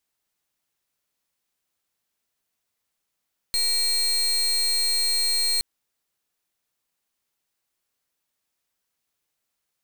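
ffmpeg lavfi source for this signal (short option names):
-f lavfi -i "aevalsrc='0.075*(2*lt(mod(4220*t,1),0.32)-1)':d=2.07:s=44100"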